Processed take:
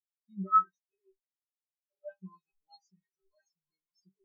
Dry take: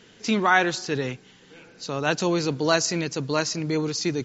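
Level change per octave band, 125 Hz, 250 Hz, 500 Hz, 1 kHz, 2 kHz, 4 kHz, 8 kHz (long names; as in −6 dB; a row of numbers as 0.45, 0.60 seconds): −21.0 dB, −21.5 dB, −28.0 dB, −5.5 dB, below −40 dB, −39.0 dB, can't be measured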